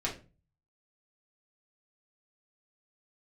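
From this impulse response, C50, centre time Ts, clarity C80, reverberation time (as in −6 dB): 9.5 dB, 20 ms, 16.0 dB, 0.35 s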